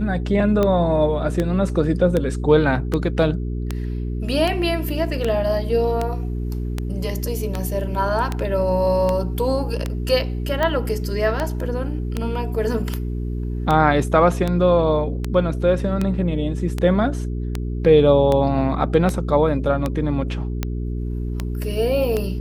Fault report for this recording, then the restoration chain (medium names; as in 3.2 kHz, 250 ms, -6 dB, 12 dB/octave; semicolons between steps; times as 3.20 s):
hum 60 Hz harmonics 7 -25 dBFS
tick 78 rpm -9 dBFS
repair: de-click; de-hum 60 Hz, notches 7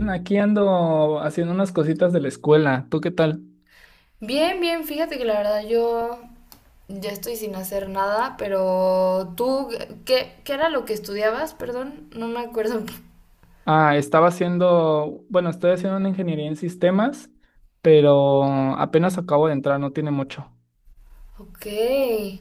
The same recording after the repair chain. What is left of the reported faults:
nothing left